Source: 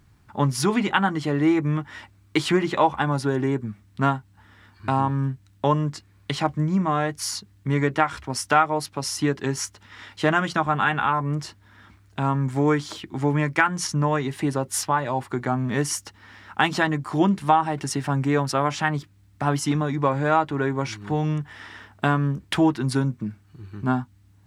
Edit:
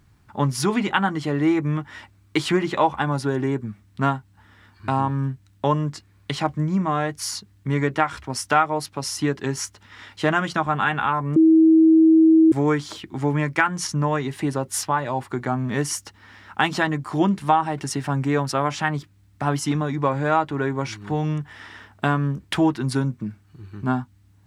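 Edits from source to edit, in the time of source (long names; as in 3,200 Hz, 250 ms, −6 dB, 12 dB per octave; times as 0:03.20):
0:11.36–0:12.52: beep over 321 Hz −10 dBFS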